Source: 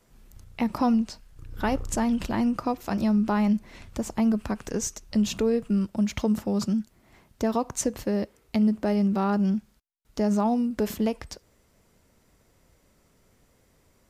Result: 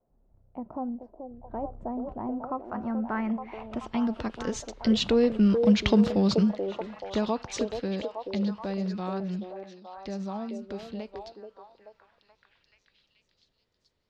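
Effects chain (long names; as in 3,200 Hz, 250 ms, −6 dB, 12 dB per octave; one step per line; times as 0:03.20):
source passing by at 0:05.79, 20 m/s, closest 15 metres
low-pass filter sweep 690 Hz → 3,900 Hz, 0:02.02–0:04.11
echo through a band-pass that steps 431 ms, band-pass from 450 Hz, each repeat 0.7 octaves, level −2 dB
level +4 dB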